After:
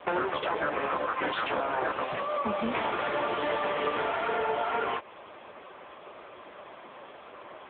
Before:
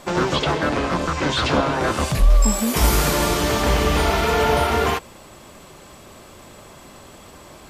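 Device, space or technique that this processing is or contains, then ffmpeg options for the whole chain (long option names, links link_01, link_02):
voicemail: -filter_complex "[0:a]asplit=3[link_01][link_02][link_03];[link_01]afade=type=out:start_time=3.35:duration=0.02[link_04];[link_02]highshelf=frequency=5900:gain=4.5,afade=type=in:start_time=3.35:duration=0.02,afade=type=out:start_time=3.88:duration=0.02[link_05];[link_03]afade=type=in:start_time=3.88:duration=0.02[link_06];[link_04][link_05][link_06]amix=inputs=3:normalize=0,highpass=430,lowpass=2800,acompressor=threshold=-26dB:ratio=12,volume=3dB" -ar 8000 -c:a libopencore_amrnb -b:a 6700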